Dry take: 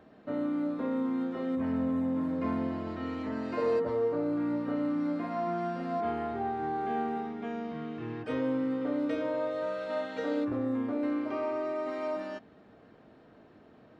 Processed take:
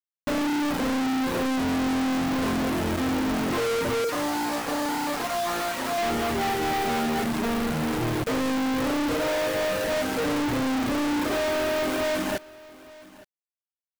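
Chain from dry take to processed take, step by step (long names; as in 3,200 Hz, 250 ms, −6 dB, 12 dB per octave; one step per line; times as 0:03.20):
each half-wave held at its own peak
low-pass filter 2,900 Hz 12 dB per octave
reverb reduction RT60 0.82 s
0:04.04–0:05.98: high-pass filter 470 Hz 12 dB per octave
in parallel at −2.5 dB: downward compressor, threshold −39 dBFS, peak gain reduction 13.5 dB
on the sum: log-companded quantiser 2 bits
on a send: single-tap delay 866 ms −21 dB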